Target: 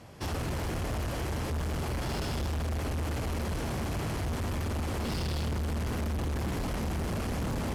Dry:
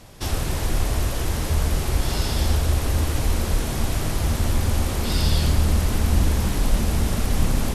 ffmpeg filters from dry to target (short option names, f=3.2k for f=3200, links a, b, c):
-af "highpass=68,highshelf=f=4.2k:g=-10.5,bandreject=f=3.7k:w=12,volume=27.5dB,asoftclip=hard,volume=-27.5dB,volume=-2dB"